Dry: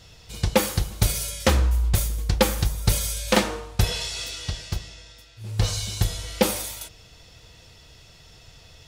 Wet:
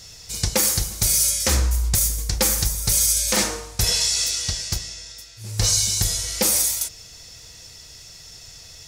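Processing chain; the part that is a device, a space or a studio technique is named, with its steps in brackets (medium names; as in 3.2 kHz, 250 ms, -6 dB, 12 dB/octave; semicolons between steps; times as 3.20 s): over-bright horn tweeter (resonant high shelf 4.1 kHz +11.5 dB, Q 1.5; peak limiter -8.5 dBFS, peak gain reduction 9 dB); peaking EQ 2.1 kHz +7 dB 0.93 oct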